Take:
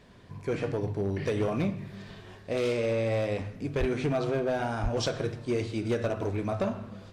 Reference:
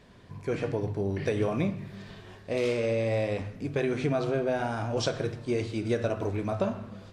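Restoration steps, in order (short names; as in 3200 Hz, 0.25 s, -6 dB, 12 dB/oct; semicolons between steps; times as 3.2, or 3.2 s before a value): clip repair -22 dBFS; de-plosive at 3.79/4.82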